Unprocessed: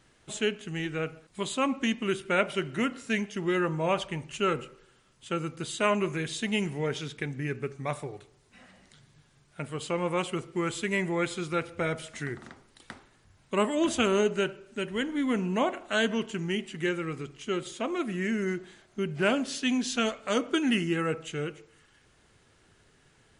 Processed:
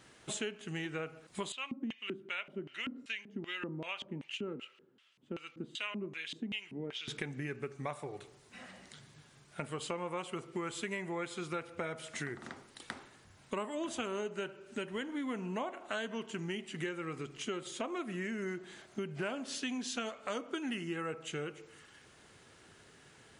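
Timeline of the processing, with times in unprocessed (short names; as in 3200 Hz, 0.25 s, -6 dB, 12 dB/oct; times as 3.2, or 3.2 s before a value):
1.52–7.08 LFO band-pass square 2.6 Hz 250–2900 Hz
whole clip: HPF 150 Hz 6 dB/oct; dynamic EQ 930 Hz, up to +4 dB, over -43 dBFS, Q 1.1; compressor 5:1, threshold -41 dBFS; gain +4 dB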